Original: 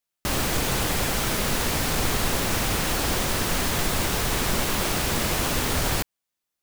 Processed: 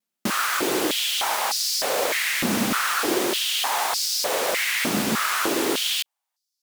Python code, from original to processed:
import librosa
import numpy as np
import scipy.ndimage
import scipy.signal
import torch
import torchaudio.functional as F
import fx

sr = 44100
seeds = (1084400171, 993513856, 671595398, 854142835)

y = fx.vibrato(x, sr, rate_hz=0.38, depth_cents=12.0)
y = fx.filter_held_highpass(y, sr, hz=3.3, low_hz=220.0, high_hz=4900.0)